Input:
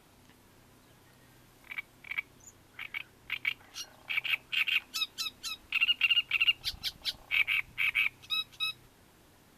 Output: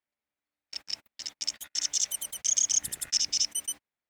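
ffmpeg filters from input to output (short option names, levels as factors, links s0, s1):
-af "agate=range=0.0126:threshold=0.00398:ratio=16:detection=peak,equalizer=f=840:t=o:w=2:g=9.5,asetrate=103194,aresample=44100"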